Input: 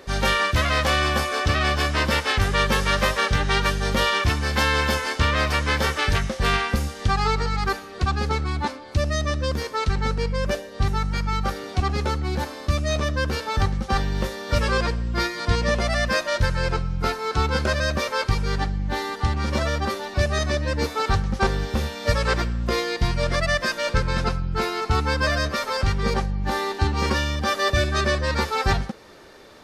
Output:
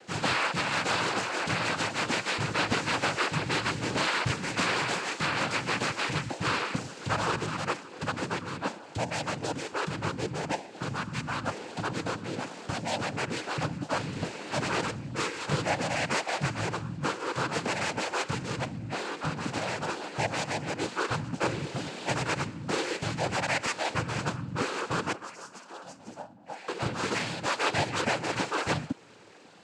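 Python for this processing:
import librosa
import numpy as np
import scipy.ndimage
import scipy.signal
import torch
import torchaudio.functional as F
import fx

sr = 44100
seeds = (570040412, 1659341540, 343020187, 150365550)

y = fx.stiff_resonator(x, sr, f0_hz=250.0, decay_s=0.23, stiffness=0.008, at=(25.12, 26.68))
y = fx.noise_vocoder(y, sr, seeds[0], bands=8)
y = y * librosa.db_to_amplitude(-5.5)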